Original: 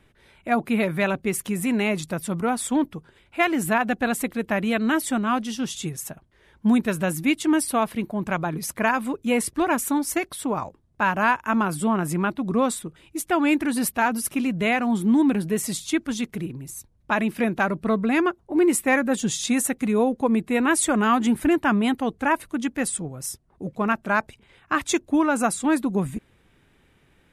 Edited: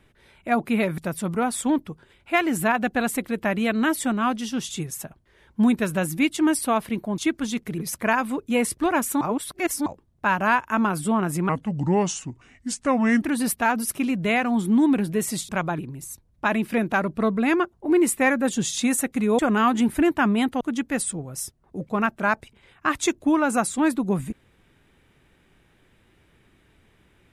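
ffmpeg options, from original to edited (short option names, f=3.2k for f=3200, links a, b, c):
-filter_complex "[0:a]asplit=12[a][b][c][d][e][f][g][h][i][j][k][l];[a]atrim=end=0.982[m];[b]atrim=start=2.038:end=8.242[n];[c]atrim=start=15.848:end=16.452[o];[d]atrim=start=8.538:end=9.972[p];[e]atrim=start=9.968:end=10.622,asetpts=PTS-STARTPTS,areverse[q];[f]atrim=start=10.618:end=12.254[r];[g]atrim=start=12.25:end=13.58,asetpts=PTS-STARTPTS,asetrate=33957,aresample=44100[s];[h]atrim=start=13.576:end=15.852[t];[i]atrim=start=8.238:end=8.542[u];[j]atrim=start=16.448:end=20.052[v];[k]atrim=start=20.848:end=22.072[w];[l]atrim=start=22.468[x];[m][n]acrossfade=d=0.004:c1=hsin:c2=hsin[y];[y][o]acrossfade=d=0.004:c1=hsin:c2=hsin[z];[z][p]acrossfade=d=0.004:c1=hsin:c2=hsin[aa];[aa][q]acrossfade=d=0.004:c1=hsin:c2=hsin[ab];[ab][r]acrossfade=d=0.004:c1=hsin:c2=hsin[ac];[ac][s]acrossfade=d=0.004:c1=hsin:c2=hsin[ad];[ad][t]acrossfade=d=0.004:c1=hsin:c2=hsin[ae];[ae][u]acrossfade=d=0.004:c1=hsin:c2=hsin[af];[af][v]acrossfade=d=0.004:c1=hsin:c2=hsin[ag];[ag][w]acrossfade=d=0.004:c1=hsin:c2=hsin[ah];[ah][x]acrossfade=d=0.004:c1=hsin:c2=hsin"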